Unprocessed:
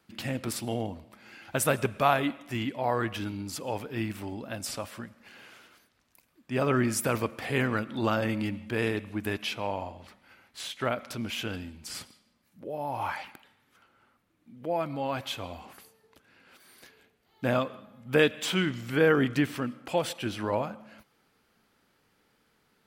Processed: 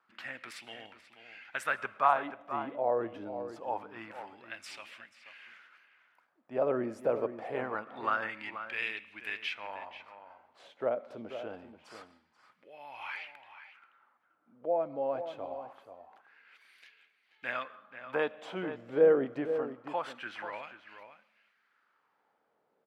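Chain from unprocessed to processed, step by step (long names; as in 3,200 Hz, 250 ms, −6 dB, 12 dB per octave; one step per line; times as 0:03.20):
LFO wah 0.25 Hz 530–2,500 Hz, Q 2.4
slap from a distant wall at 83 metres, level −10 dB
level +2.5 dB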